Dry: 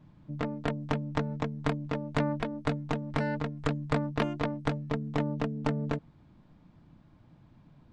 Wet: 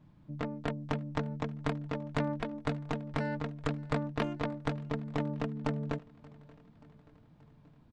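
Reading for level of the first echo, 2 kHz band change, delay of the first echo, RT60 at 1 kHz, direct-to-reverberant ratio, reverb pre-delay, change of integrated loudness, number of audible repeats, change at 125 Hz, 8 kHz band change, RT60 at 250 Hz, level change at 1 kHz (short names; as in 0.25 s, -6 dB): -23.0 dB, -3.5 dB, 0.58 s, none, none, none, -3.5 dB, 3, -3.5 dB, -3.5 dB, none, -3.5 dB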